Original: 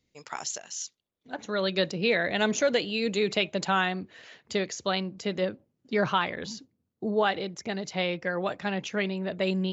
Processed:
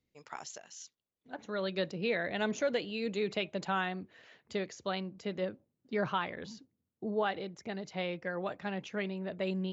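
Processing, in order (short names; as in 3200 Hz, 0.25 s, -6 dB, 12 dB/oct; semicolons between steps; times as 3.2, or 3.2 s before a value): high shelf 4000 Hz -9 dB; gain -6.5 dB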